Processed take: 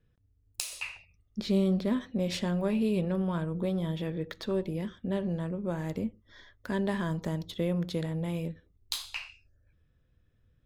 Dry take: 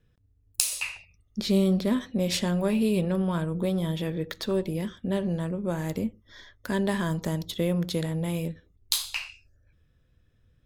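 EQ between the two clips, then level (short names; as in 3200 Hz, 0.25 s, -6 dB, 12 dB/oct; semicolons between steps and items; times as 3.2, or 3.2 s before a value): bell 14000 Hz -10 dB 1.8 oct; -3.5 dB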